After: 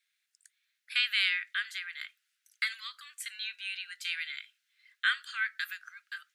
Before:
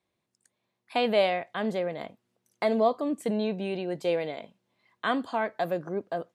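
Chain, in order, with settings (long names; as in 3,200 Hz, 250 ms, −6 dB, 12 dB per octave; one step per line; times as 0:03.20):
Butterworth high-pass 1,400 Hz 72 dB per octave
level +6 dB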